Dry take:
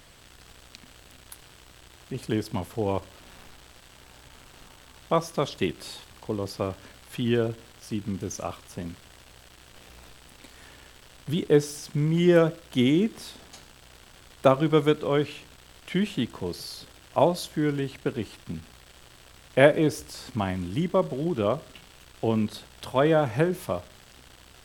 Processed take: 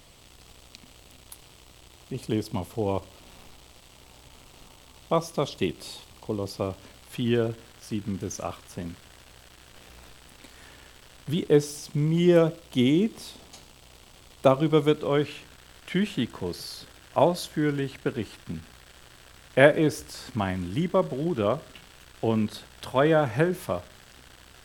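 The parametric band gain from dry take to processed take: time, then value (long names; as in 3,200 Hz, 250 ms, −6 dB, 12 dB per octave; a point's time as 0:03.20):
parametric band 1,600 Hz 0.53 octaves
0:06.69 −8.5 dB
0:07.48 0 dB
0:11.33 0 dB
0:11.81 −6.5 dB
0:14.80 −6.5 dB
0:15.33 +3 dB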